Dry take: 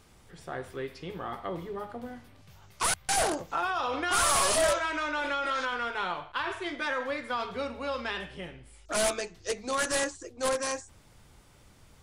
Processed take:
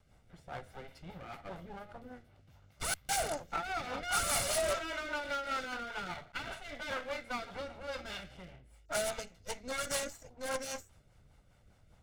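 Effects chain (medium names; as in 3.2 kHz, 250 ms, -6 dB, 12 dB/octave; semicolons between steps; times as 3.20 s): comb filter that takes the minimum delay 1.4 ms; rotary cabinet horn 5 Hz; tape noise reduction on one side only decoder only; trim -3 dB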